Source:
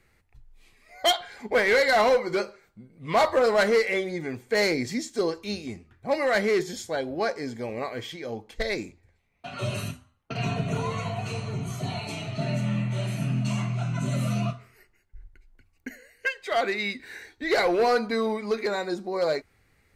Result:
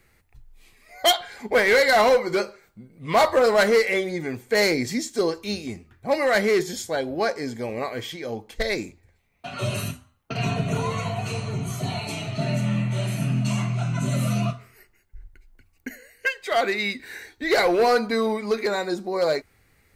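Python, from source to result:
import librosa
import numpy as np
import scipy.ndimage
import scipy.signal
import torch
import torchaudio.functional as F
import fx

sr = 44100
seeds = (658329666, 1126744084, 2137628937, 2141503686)

y = fx.high_shelf(x, sr, hz=11000.0, db=10.0)
y = F.gain(torch.from_numpy(y), 3.0).numpy()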